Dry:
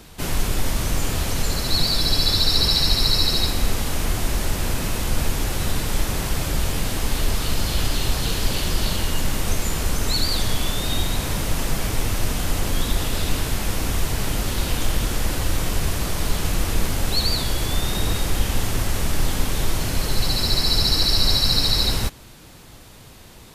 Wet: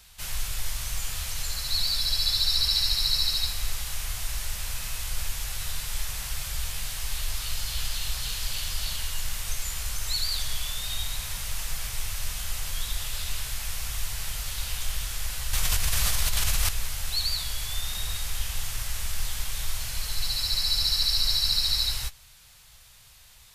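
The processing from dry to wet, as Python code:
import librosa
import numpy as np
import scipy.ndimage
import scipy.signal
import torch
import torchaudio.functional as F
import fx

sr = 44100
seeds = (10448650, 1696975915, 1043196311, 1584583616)

y = fx.tone_stack(x, sr, knobs='10-0-10')
y = fx.doubler(y, sr, ms=16.0, db=-12.5)
y = fx.env_flatten(y, sr, amount_pct=100, at=(15.53, 16.69))
y = y * librosa.db_to_amplitude(-3.5)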